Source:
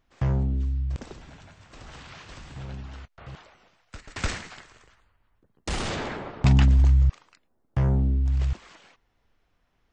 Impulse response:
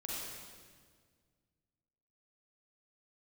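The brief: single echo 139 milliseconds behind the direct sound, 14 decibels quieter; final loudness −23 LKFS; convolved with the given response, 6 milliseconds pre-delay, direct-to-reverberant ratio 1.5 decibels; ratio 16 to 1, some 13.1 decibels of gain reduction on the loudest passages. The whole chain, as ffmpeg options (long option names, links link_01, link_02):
-filter_complex "[0:a]acompressor=threshold=-27dB:ratio=16,aecho=1:1:139:0.2,asplit=2[link_01][link_02];[1:a]atrim=start_sample=2205,adelay=6[link_03];[link_02][link_03]afir=irnorm=-1:irlink=0,volume=-2.5dB[link_04];[link_01][link_04]amix=inputs=2:normalize=0,volume=8.5dB"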